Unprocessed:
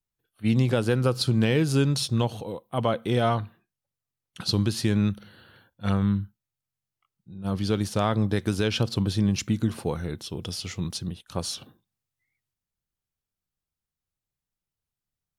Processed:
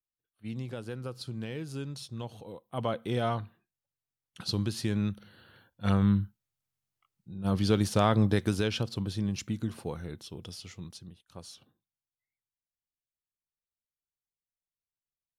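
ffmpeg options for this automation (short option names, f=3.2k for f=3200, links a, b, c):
-af "afade=t=in:st=2.16:d=0.71:silence=0.354813,afade=t=in:st=5.15:d=1.06:silence=0.473151,afade=t=out:st=8.25:d=0.63:silence=0.398107,afade=t=out:st=10.19:d=0.92:silence=0.398107"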